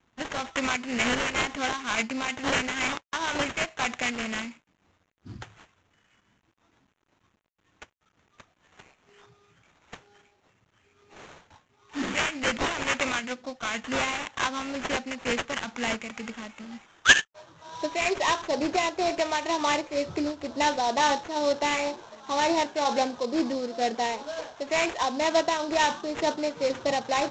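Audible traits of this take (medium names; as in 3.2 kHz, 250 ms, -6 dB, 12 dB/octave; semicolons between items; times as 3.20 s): aliases and images of a low sample rate 4.8 kHz, jitter 20%; tremolo triangle 2.1 Hz, depth 50%; a quantiser's noise floor 12-bit, dither none; Vorbis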